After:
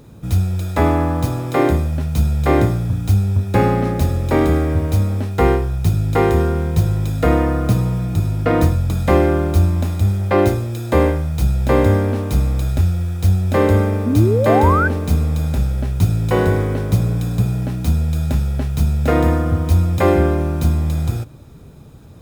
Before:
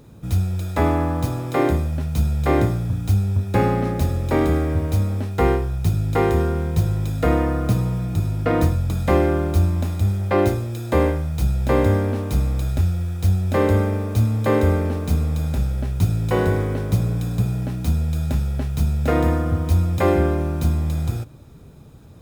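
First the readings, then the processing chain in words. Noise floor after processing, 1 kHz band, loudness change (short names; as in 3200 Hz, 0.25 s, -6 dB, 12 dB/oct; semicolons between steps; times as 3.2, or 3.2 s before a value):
-38 dBFS, +4.5 dB, +3.5 dB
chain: painted sound rise, 14.06–14.88, 230–1600 Hz -21 dBFS; gain +3.5 dB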